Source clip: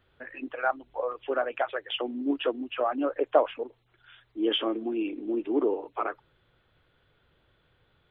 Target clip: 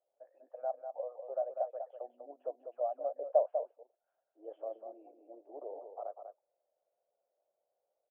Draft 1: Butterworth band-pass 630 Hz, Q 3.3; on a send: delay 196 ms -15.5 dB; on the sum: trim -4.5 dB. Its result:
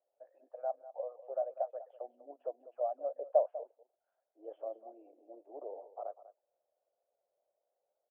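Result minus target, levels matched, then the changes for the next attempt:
echo-to-direct -8 dB
change: delay 196 ms -7.5 dB

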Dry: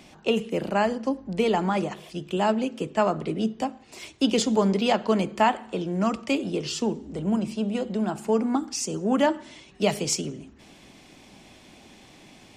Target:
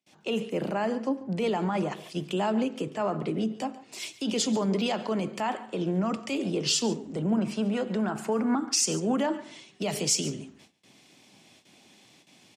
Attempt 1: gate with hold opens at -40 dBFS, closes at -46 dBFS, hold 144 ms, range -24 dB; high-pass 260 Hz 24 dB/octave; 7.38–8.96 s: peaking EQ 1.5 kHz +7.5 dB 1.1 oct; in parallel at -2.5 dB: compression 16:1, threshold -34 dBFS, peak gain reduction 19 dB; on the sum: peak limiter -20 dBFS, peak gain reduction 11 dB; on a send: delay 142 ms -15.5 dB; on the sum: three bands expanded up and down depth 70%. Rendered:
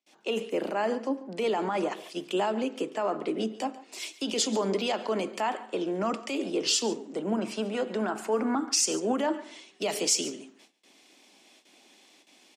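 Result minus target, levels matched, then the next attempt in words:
125 Hz band -9.5 dB
gate with hold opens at -40 dBFS, closes at -46 dBFS, hold 144 ms, range -24 dB; high-pass 110 Hz 24 dB/octave; 7.38–8.96 s: peaking EQ 1.5 kHz +7.5 dB 1.1 oct; in parallel at -2.5 dB: compression 16:1, threshold -34 dBFS, peak gain reduction 19.5 dB; on the sum: peak limiter -20 dBFS, peak gain reduction 11.5 dB; on a send: delay 142 ms -15.5 dB; on the sum: three bands expanded up and down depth 70%

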